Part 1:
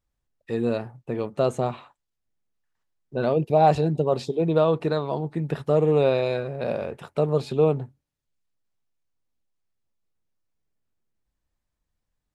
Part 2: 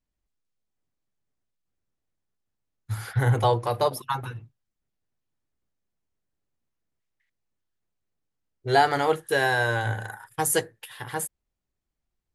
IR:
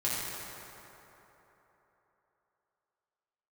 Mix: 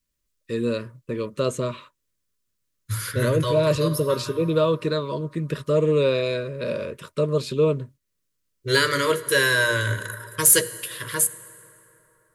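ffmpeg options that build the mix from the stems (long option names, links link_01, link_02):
-filter_complex "[0:a]agate=range=-15dB:threshold=-45dB:ratio=16:detection=peak,volume=0dB,asplit=2[link_01][link_02];[1:a]bandreject=frequency=60:width_type=h:width=6,bandreject=frequency=120:width_type=h:width=6,bandreject=frequency=180:width_type=h:width=6,bandreject=frequency=240:width_type=h:width=6,bandreject=frequency=300:width_type=h:width=6,bandreject=frequency=360:width_type=h:width=6,bandreject=frequency=420:width_type=h:width=6,bandreject=frequency=480:width_type=h:width=6,volume=2dB,asplit=2[link_03][link_04];[link_04]volume=-21.5dB[link_05];[link_02]apad=whole_len=544589[link_06];[link_03][link_06]sidechaincompress=threshold=-27dB:ratio=8:attack=36:release=496[link_07];[2:a]atrim=start_sample=2205[link_08];[link_05][link_08]afir=irnorm=-1:irlink=0[link_09];[link_01][link_07][link_09]amix=inputs=3:normalize=0,asuperstop=centerf=770:order=20:qfactor=2.6,highshelf=frequency=3300:gain=10.5,asoftclip=type=hard:threshold=-9dB"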